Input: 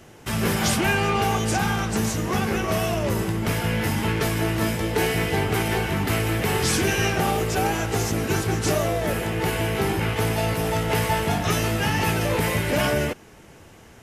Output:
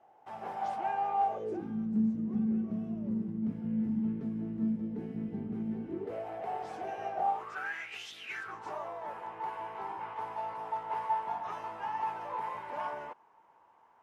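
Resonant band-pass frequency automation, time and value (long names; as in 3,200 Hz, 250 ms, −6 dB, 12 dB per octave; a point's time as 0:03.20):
resonant band-pass, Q 8.1
0:01.23 790 Hz
0:01.77 220 Hz
0:05.78 220 Hz
0:06.26 720 Hz
0:07.22 720 Hz
0:08.15 3,700 Hz
0:08.58 950 Hz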